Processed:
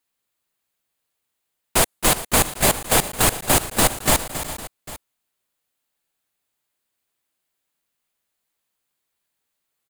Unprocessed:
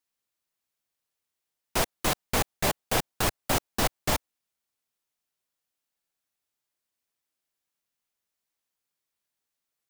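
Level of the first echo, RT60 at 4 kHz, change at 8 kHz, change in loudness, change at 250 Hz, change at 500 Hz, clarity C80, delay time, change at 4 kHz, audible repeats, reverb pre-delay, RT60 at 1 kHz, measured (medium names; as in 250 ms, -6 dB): -11.5 dB, no reverb, +13.0 dB, +9.5 dB, +7.5 dB, +7.5 dB, no reverb, 272 ms, +8.5 dB, 4, no reverb, no reverb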